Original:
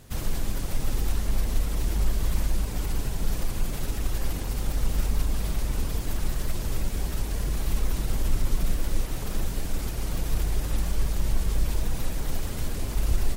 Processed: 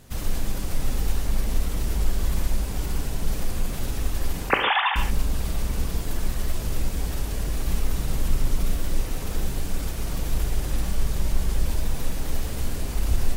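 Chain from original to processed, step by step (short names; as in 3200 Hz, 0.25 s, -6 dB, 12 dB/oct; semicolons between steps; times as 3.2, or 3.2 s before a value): 4.49–4.96 sine-wave speech; non-linear reverb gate 0.17 s flat, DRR 3.5 dB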